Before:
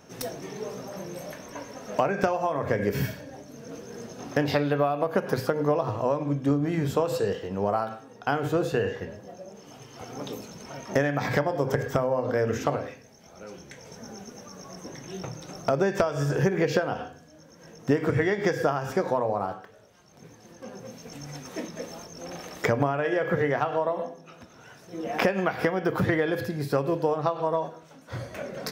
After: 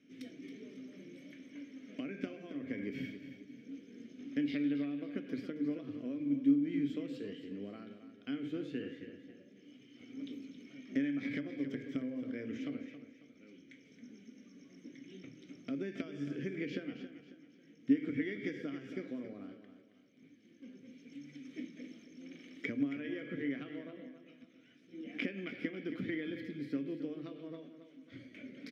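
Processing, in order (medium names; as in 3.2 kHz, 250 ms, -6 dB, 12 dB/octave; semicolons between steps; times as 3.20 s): vowel filter i; feedback delay 273 ms, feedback 37%, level -11 dB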